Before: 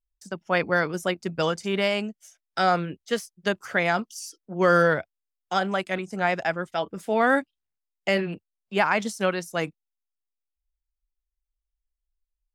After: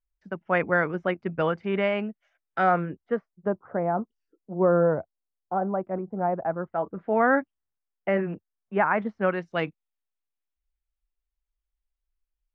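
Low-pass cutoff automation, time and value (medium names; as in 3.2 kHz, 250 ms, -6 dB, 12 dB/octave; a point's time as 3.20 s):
low-pass 24 dB/octave
2.63 s 2.3 kHz
3.59 s 1 kHz
6.33 s 1 kHz
7.18 s 1.8 kHz
9.21 s 1.8 kHz
9.62 s 3.4 kHz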